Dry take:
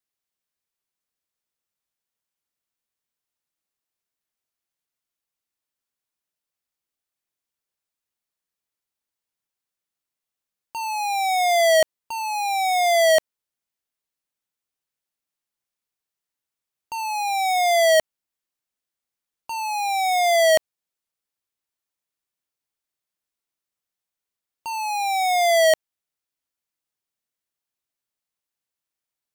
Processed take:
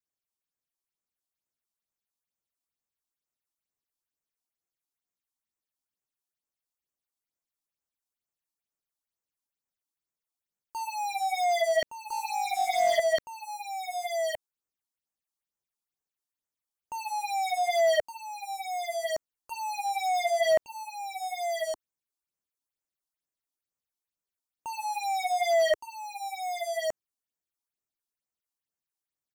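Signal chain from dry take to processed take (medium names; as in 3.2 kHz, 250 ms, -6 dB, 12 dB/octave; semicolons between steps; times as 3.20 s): delay 1166 ms -6.5 dB; phase shifter stages 6, 2.2 Hz, lowest notch 120–4200 Hz; slew-rate limiter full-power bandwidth 250 Hz; trim -5 dB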